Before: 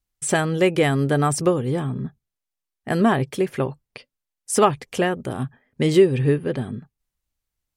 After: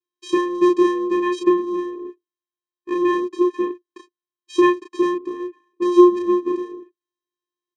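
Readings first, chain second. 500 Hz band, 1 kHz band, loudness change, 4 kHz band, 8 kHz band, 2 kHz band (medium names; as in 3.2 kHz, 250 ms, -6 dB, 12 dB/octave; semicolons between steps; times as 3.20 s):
+2.0 dB, +1.0 dB, +2.0 dB, -4.5 dB, under -10 dB, -3.5 dB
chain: vocoder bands 4, square 353 Hz; doubling 33 ms -3 dB; trim +3 dB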